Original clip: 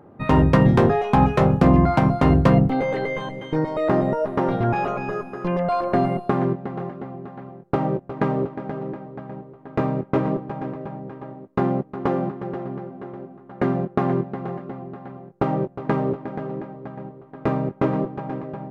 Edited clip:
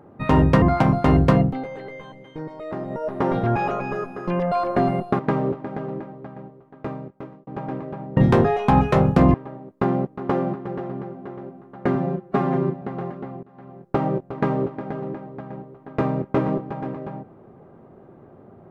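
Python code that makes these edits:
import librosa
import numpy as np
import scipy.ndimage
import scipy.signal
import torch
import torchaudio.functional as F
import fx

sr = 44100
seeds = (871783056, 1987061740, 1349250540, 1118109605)

y = fx.edit(x, sr, fx.move(start_s=0.62, length_s=1.17, to_s=11.1),
    fx.fade_down_up(start_s=2.46, length_s=1.96, db=-11.0, fade_s=0.39),
    fx.cut(start_s=6.36, length_s=1.76),
    fx.fade_out_span(start_s=8.84, length_s=1.56),
    fx.stretch_span(start_s=13.71, length_s=0.58, factor=1.5),
    fx.fade_in_from(start_s=14.9, length_s=0.4, floor_db=-23.0), tone=tone)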